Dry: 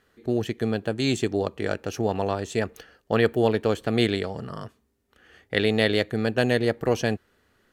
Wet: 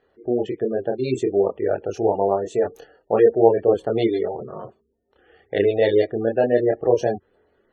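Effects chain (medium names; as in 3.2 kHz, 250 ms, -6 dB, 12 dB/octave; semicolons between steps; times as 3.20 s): chorus voices 2, 0.27 Hz, delay 27 ms, depth 3.9 ms; spectral gate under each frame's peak -20 dB strong; high-order bell 550 Hz +10.5 dB; trim -1 dB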